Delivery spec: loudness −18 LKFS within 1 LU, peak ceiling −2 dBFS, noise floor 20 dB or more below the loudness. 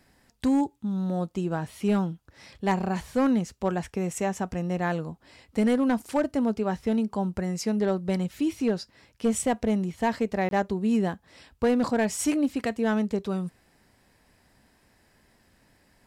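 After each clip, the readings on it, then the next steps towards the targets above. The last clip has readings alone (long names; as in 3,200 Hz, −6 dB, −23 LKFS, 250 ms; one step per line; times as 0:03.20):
share of clipped samples 0.7%; peaks flattened at −16.5 dBFS; number of dropouts 1; longest dropout 22 ms; integrated loudness −27.0 LKFS; sample peak −16.5 dBFS; target loudness −18.0 LKFS
→ clipped peaks rebuilt −16.5 dBFS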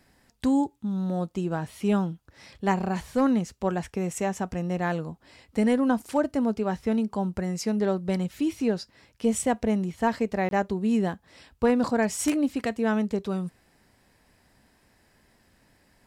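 share of clipped samples 0.0%; number of dropouts 1; longest dropout 22 ms
→ repair the gap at 0:10.49, 22 ms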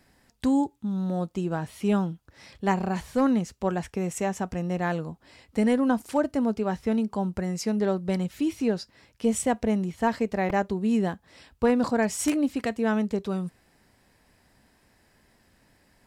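number of dropouts 0; integrated loudness −27.0 LKFS; sample peak −7.5 dBFS; target loudness −18.0 LKFS
→ level +9 dB
brickwall limiter −2 dBFS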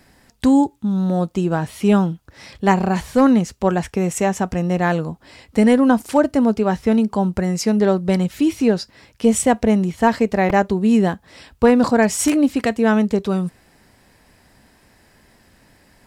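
integrated loudness −18.0 LKFS; sample peak −2.0 dBFS; background noise floor −55 dBFS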